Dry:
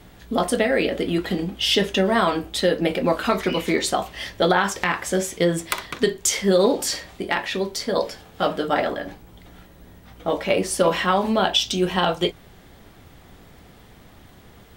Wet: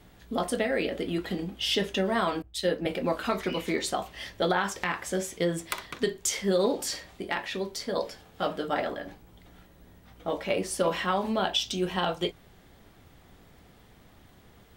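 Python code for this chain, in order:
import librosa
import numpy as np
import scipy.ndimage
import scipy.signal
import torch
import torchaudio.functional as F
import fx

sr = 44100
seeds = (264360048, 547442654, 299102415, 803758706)

y = fx.band_widen(x, sr, depth_pct=100, at=(2.42, 2.86))
y = y * librosa.db_to_amplitude(-7.5)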